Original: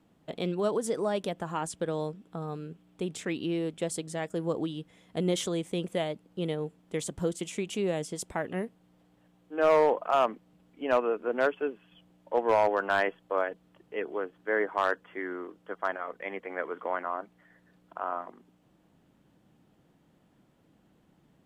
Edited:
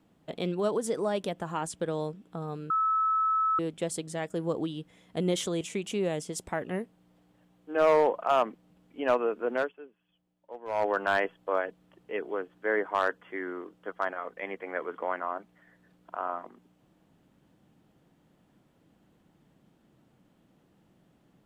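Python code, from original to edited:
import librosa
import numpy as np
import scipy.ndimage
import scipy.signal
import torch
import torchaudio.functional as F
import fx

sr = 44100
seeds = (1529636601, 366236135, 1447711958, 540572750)

y = fx.edit(x, sr, fx.bleep(start_s=2.7, length_s=0.89, hz=1300.0, db=-23.0),
    fx.cut(start_s=5.61, length_s=1.83),
    fx.fade_down_up(start_s=11.36, length_s=1.36, db=-16.0, fade_s=0.22), tone=tone)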